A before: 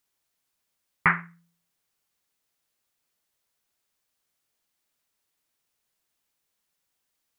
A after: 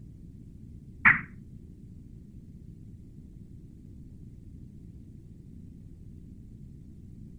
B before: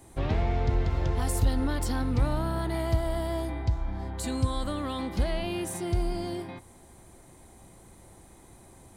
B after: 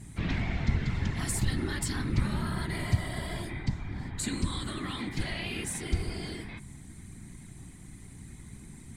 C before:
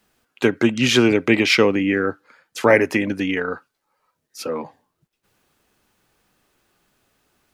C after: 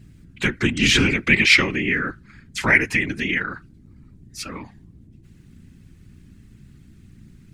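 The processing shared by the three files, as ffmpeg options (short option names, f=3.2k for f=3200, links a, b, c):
-af "aeval=exprs='val(0)+0.00708*(sin(2*PI*60*n/s)+sin(2*PI*2*60*n/s)/2+sin(2*PI*3*60*n/s)/3+sin(2*PI*4*60*n/s)/4+sin(2*PI*5*60*n/s)/5)':c=same,equalizer=f=125:t=o:w=1:g=9,equalizer=f=250:t=o:w=1:g=5,equalizer=f=500:t=o:w=1:g=-11,equalizer=f=2k:t=o:w=1:g=12,equalizer=f=4k:t=o:w=1:g=5,equalizer=f=8k:t=o:w=1:g=10,afftfilt=real='hypot(re,im)*cos(2*PI*random(0))':imag='hypot(re,im)*sin(2*PI*random(1))':win_size=512:overlap=0.75,volume=-1dB"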